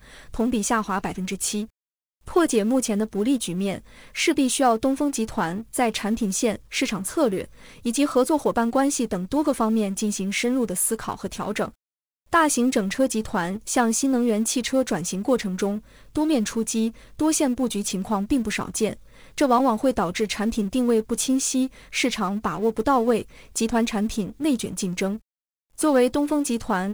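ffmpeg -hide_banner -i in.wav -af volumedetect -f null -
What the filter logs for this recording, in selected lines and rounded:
mean_volume: -23.6 dB
max_volume: -8.6 dB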